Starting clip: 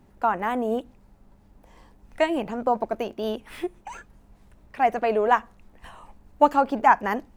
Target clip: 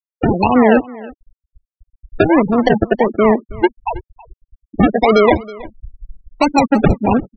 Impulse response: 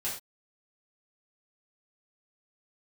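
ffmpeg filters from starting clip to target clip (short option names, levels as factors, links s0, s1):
-filter_complex "[0:a]acrossover=split=280|3000[s0][s1][s2];[s1]acompressor=threshold=0.0447:ratio=8[s3];[s0][s3][s2]amix=inputs=3:normalize=0,acrusher=samples=34:mix=1:aa=0.000001:lfo=1:lforange=20.4:lforate=1.5,afftfilt=real='re*gte(hypot(re,im),0.0501)':imag='im*gte(hypot(re,im),0.0501)':win_size=1024:overlap=0.75,asplit=2[s4][s5];[s5]aecho=0:1:322:0.0891[s6];[s4][s6]amix=inputs=2:normalize=0,alimiter=level_in=9.44:limit=0.891:release=50:level=0:latency=1,volume=0.891"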